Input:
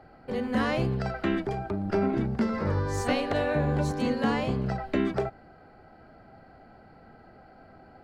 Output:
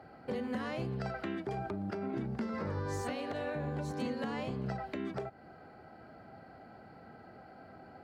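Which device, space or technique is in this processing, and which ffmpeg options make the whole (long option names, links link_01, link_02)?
podcast mastering chain: -af "highpass=88,deesser=0.95,acompressor=threshold=-34dB:ratio=2,alimiter=level_in=2.5dB:limit=-24dB:level=0:latency=1:release=326,volume=-2.5dB" -ar 44100 -c:a libmp3lame -b:a 96k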